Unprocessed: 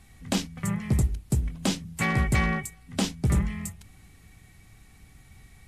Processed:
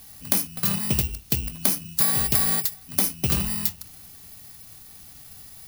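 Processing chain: FFT order left unsorted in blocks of 16 samples; tilt +2.5 dB/oct; compressor 6:1, threshold -24 dBFS, peak gain reduction 9 dB; gain +6.5 dB

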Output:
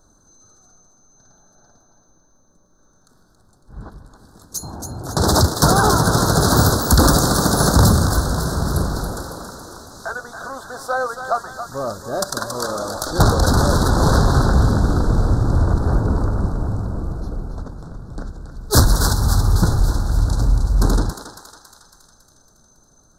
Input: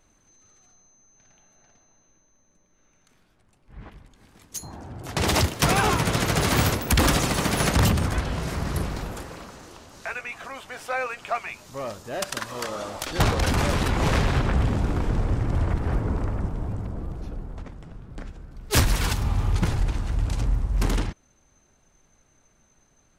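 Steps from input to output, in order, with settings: elliptic band-stop 1500–4000 Hz, stop band 70 dB; thinning echo 0.277 s, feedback 59%, high-pass 920 Hz, level -6.5 dB; gain +7.5 dB

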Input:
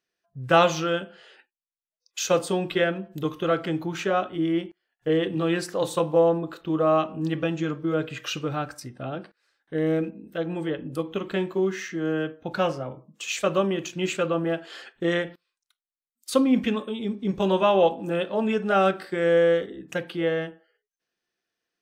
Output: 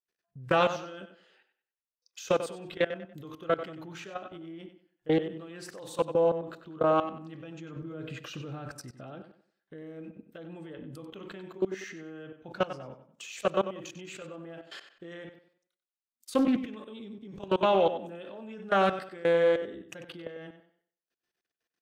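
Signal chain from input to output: level quantiser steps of 21 dB; 7.76–8.84 low shelf 420 Hz +7 dB; on a send: tape echo 94 ms, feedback 33%, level -10 dB, low-pass 5800 Hz; on the sum: Doppler distortion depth 0.22 ms; gain -1.5 dB

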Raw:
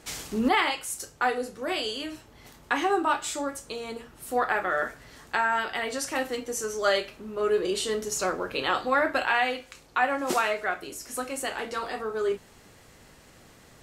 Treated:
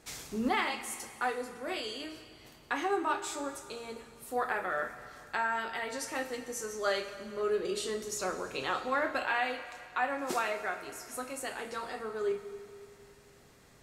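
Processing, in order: notch 3000 Hz, Q 21; on a send: reverb RT60 2.5 s, pre-delay 4 ms, DRR 9 dB; on the sum: gain -7 dB

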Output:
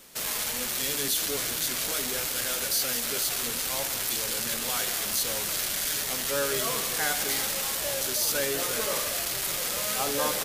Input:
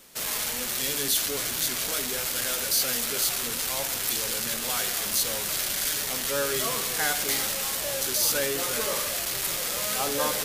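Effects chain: limiter -18 dBFS, peak gain reduction 5.5 dB; on a send: frequency-shifting echo 0.191 s, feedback 53%, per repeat +51 Hz, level -14 dB; on the sum: gain +1 dB

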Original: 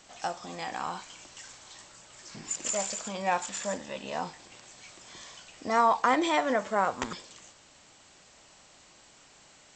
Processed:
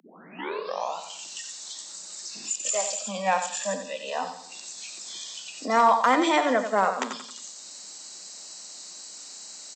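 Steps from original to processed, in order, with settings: tape start at the beginning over 1.03 s; spectral noise reduction 15 dB; on a send: feedback echo 89 ms, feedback 31%, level -9 dB; on the sum: upward compressor, threshold -33 dBFS; steep high-pass 170 Hz 96 dB/oct; in parallel at -5.5 dB: wavefolder -15.5 dBFS

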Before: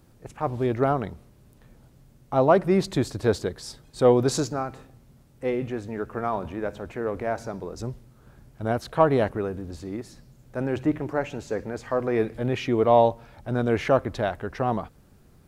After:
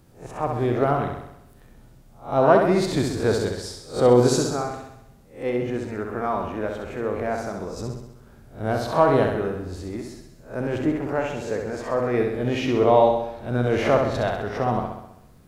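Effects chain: spectral swells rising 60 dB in 0.33 s; flutter echo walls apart 11.2 m, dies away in 0.82 s

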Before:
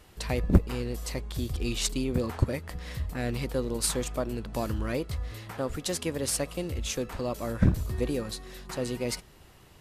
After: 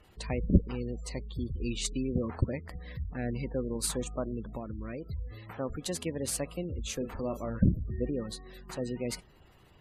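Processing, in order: dynamic EQ 200 Hz, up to +4 dB, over -40 dBFS, Q 1.7; 4.5–5.06 compressor, threshold -31 dBFS, peak gain reduction 7 dB; 6.97–7.59 doubler 36 ms -8 dB; spectral gate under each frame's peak -25 dB strong; notch 5400 Hz, Q 13; gain -4 dB

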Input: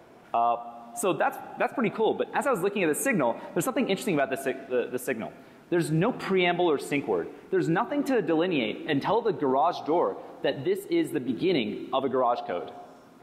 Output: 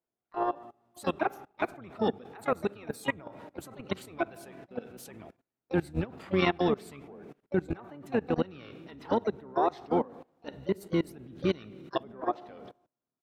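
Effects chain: gate -38 dBFS, range -21 dB; level quantiser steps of 23 dB; harmoniser -12 st -4 dB, +7 st -13 dB; gain -2.5 dB

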